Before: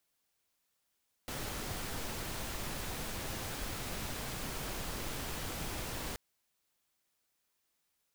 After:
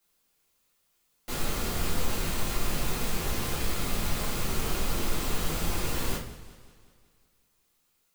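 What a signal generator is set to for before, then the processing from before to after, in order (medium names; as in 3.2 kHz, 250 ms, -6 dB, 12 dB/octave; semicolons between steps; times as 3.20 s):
noise pink, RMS -39.5 dBFS 4.88 s
treble shelf 8.8 kHz +3.5 dB; simulated room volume 48 m³, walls mixed, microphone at 1.3 m; modulated delay 187 ms, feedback 55%, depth 174 cents, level -16 dB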